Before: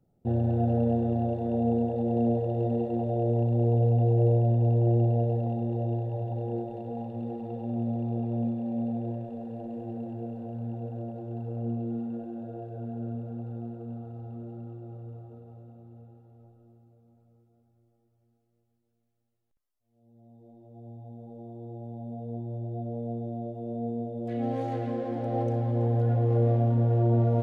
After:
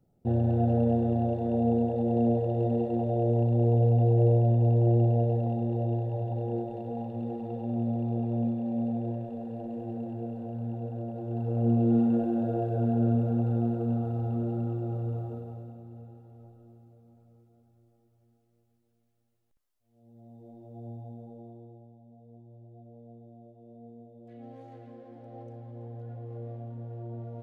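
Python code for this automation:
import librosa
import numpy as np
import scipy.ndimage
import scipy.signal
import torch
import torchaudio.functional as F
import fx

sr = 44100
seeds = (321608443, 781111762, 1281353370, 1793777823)

y = fx.gain(x, sr, db=fx.line((11.07, 0.5), (11.97, 10.0), (15.28, 10.0), (15.82, 3.5), (20.91, 3.5), (21.52, -4.5), (22.01, -16.5)))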